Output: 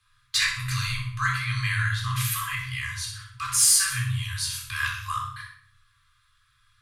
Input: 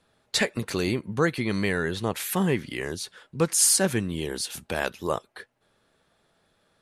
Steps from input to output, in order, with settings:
brick-wall band-stop 120–990 Hz
rectangular room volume 730 cubic metres, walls furnished, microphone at 3.8 metres
in parallel at −8 dB: hard clipping −16.5 dBFS, distortion −11 dB
on the sum: frequency shifter +13 Hz
on a send: flutter between parallel walls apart 10.7 metres, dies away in 0.48 s
on the sum: level −4.5 dB

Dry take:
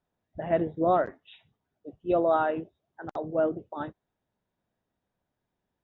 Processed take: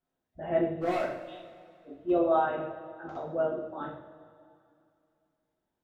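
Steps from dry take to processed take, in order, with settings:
0:00.65–0:02.10: hard clipping −23 dBFS, distortion −14 dB
coupled-rooms reverb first 0.54 s, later 2.5 s, from −16 dB, DRR −6 dB
level −9 dB

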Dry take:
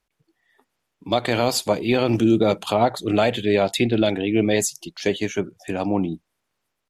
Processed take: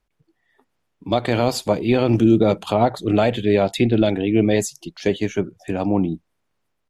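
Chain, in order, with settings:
spectral tilt −1.5 dB per octave

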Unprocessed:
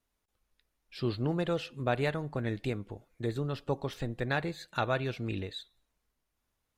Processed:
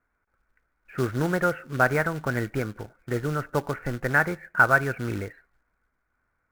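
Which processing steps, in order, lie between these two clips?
elliptic low-pass filter 2,200 Hz, stop band 40 dB
floating-point word with a short mantissa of 2 bits
parametric band 1,400 Hz +14 dB 0.41 octaves
change of speed 1.04×
level +6 dB

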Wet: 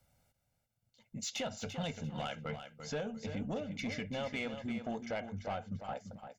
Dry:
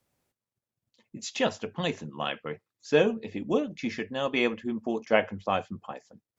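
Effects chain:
low-shelf EQ 110 Hz +9 dB
comb filter 1.4 ms, depth 73%
transient designer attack −7 dB, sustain −3 dB
downward compressor 12 to 1, threshold −34 dBFS, peak gain reduction 18 dB
soft clipping −31 dBFS, distortion −18 dB
repeating echo 343 ms, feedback 21%, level −9 dB
level +1 dB

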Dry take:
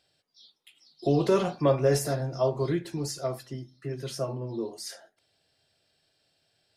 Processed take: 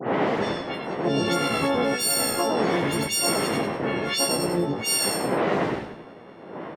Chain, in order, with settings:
every partial snapped to a pitch grid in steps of 4 semitones
wind on the microphone 500 Hz −34 dBFS
high-pass filter 330 Hz 24 dB per octave
high-shelf EQ 7,100 Hz +4.5 dB
double-tracking delay 15 ms −3.5 dB
low-pass that shuts in the quiet parts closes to 1,600 Hz, open at −20.5 dBFS
parametric band 2,000 Hz +8.5 dB 0.36 octaves
echo with shifted repeats 97 ms, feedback 33%, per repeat −62 Hz, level −5.5 dB
downward compressor 5 to 1, threshold −29 dBFS, peak gain reduction 13 dB
pitch-shifted copies added −12 semitones −4 dB, −3 semitones −16 dB, +7 semitones −9 dB
brickwall limiter −23 dBFS, peak gain reduction 7.5 dB
all-pass dispersion highs, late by 81 ms, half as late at 2,800 Hz
level +9 dB

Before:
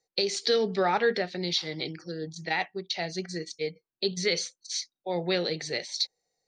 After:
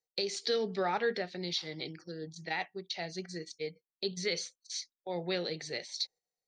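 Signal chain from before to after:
noise gate −45 dBFS, range −8 dB
level −6.5 dB

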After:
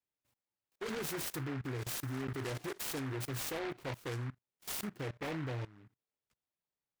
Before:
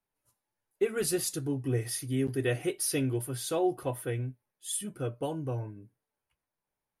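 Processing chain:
high-pass filter 56 Hz 6 dB per octave
output level in coarse steps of 20 dB
short delay modulated by noise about 1,300 Hz, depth 0.19 ms
level +2 dB

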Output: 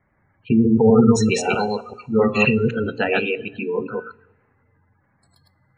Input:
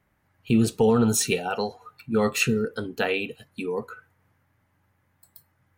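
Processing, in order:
delay that plays each chunk backwards 129 ms, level −1 dB
low-pass filter 5,100 Hz 12 dB per octave
gate on every frequency bin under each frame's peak −20 dB strong
hum removal 57.72 Hz, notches 9
pitch vibrato 3.7 Hz 14 cents
coupled-rooms reverb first 0.22 s, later 1.7 s, from −20 dB, DRR 14 dB
level +4 dB

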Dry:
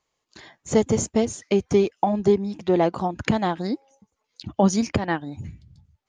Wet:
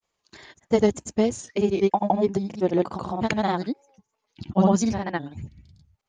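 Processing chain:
granular cloud 100 ms, grains 20 per second, pitch spread up and down by 0 semitones
pitch vibrato 3.2 Hz 52 cents

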